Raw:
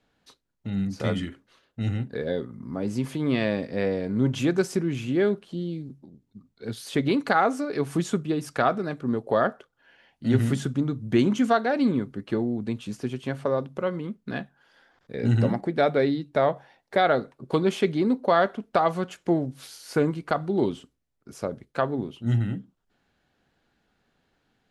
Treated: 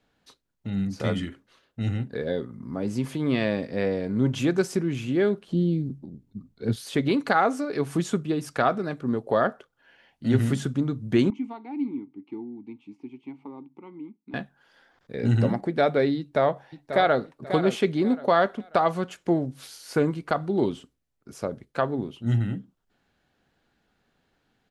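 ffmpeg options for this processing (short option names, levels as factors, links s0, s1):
-filter_complex "[0:a]asettb=1/sr,asplit=3[s0][s1][s2];[s0]atrim=end=5.484[s3];[s1]atrim=start=5.48:end=6.76,asetpts=PTS-STARTPTS,afade=t=in:d=0.004:c=qsin,afade=t=out:st=1.276:d=0.004:c=qsin,lowshelf=f=440:g=10[s4];[s2]atrim=start=6.756[s5];[s3][s4]acrossfade=d=0.004:c1=hsin:c2=qsin[s6];[s6][s5]acrossfade=d=0.004:c1=qsin:c2=hsin,asettb=1/sr,asplit=3[s7][s8][s9];[s7]atrim=end=11.304[s10];[s8]atrim=start=11.3:end=14.34,asetpts=PTS-STARTPTS,afade=t=in:d=0.004:c=qsin,afade=t=out:st=3.036:d=0.004:c=qsin,asplit=3[s11][s12][s13];[s11]bandpass=f=300:t=q:w=8,volume=1[s14];[s12]bandpass=f=870:t=q:w=8,volume=0.501[s15];[s13]bandpass=f=2240:t=q:w=8,volume=0.355[s16];[s14][s15][s16]amix=inputs=3:normalize=0[s17];[s9]atrim=start=14.336[s18];[s10][s17]acrossfade=d=0.004:c1=hsin:c2=qsin[s19];[s19][s18]acrossfade=d=0.004:c1=qsin:c2=hsin,asplit=2[s20][s21];[s21]afade=t=in:st=16.18:d=0.01,afade=t=out:st=17.21:d=0.01,aecho=0:1:540|1080|1620:0.316228|0.0948683|0.0284605[s22];[s20][s22]amix=inputs=2:normalize=0"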